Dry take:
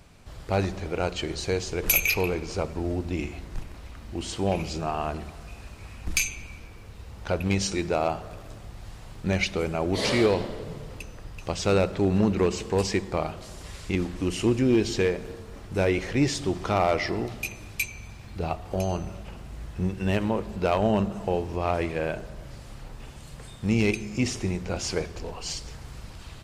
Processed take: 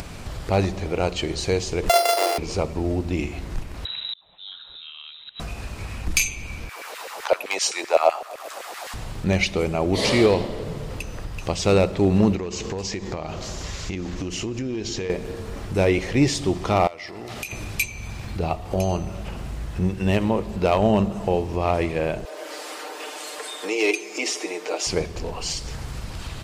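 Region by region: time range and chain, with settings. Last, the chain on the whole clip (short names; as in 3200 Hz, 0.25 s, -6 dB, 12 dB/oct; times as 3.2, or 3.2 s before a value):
1.89–2.38 sample sorter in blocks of 64 samples + elliptic high-pass 360 Hz + flutter echo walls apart 7.5 m, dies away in 0.41 s
3.85–5.4 flipped gate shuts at -29 dBFS, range -33 dB + inverted band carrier 3900 Hz
6.69–8.94 HPF 260 Hz 24 dB/oct + high shelf 9200 Hz +8.5 dB + LFO high-pass saw down 7.8 Hz 460–1900 Hz
12.36–15.1 resonant high shelf 7800 Hz -6 dB, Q 3 + compressor, threshold -31 dBFS
16.87–17.53 HPF 51 Hz + compressor 8:1, threshold -35 dBFS + low shelf 480 Hz -10 dB
22.25–24.87 steep high-pass 340 Hz + comb 6.6 ms, depth 77%
whole clip: dynamic EQ 1500 Hz, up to -6 dB, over -52 dBFS, Q 4.1; upward compressor, threshold -29 dBFS; gain +4.5 dB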